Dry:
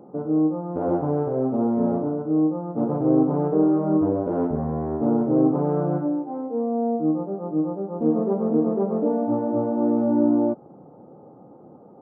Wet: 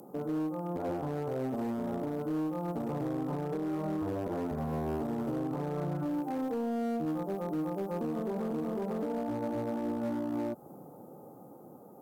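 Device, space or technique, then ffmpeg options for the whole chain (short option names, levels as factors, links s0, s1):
FM broadcast chain: -filter_complex "[0:a]asettb=1/sr,asplit=3[s0][s1][s2];[s0]atrim=end=5.844[s3];[s1]atrim=start=5.84:end=7.05,asetpts=PTS-STARTPTS,afade=t=in:d=0.004:c=qsin,afade=t=out:st=1.206:d=0.004:c=qsin,equalizer=f=82:w=0.42:g=9[s4];[s2]atrim=start=7.046[s5];[s3][s4]acrossfade=d=0.004:c1=hsin:c2=qsin[s6];[s6][s5]acrossfade=d=0.004:c1=qsin:c2=hsin,highpass=61,dynaudnorm=f=580:g=9:m=2.51,acrossover=split=120|800[s7][s8][s9];[s7]acompressor=threshold=0.02:ratio=4[s10];[s8]acompressor=threshold=0.0447:ratio=4[s11];[s9]acompressor=threshold=0.0126:ratio=4[s12];[s10][s11][s12]amix=inputs=3:normalize=0,aemphasis=mode=production:type=75fm,alimiter=limit=0.0794:level=0:latency=1:release=63,asoftclip=type=hard:threshold=0.0562,lowpass=f=15000:w=0.5412,lowpass=f=15000:w=1.3066,aemphasis=mode=production:type=75fm,volume=0.708"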